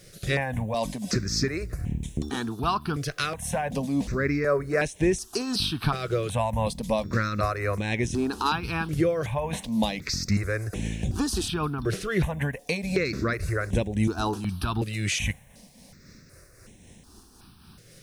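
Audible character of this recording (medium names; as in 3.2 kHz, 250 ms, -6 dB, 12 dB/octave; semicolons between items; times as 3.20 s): tremolo triangle 3.8 Hz, depth 50%; a quantiser's noise floor 12-bit, dither triangular; notches that jump at a steady rate 2.7 Hz 240–4700 Hz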